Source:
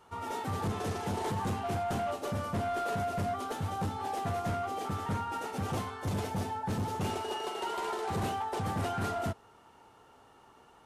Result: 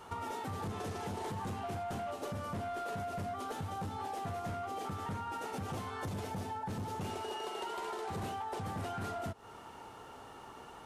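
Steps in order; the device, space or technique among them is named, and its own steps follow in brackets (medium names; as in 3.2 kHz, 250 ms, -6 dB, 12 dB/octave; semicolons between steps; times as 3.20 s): serial compression, peaks first (compression, threshold -41 dBFS, peak gain reduction 10 dB; compression 2.5:1, threshold -47 dBFS, peak gain reduction 6 dB); trim +8 dB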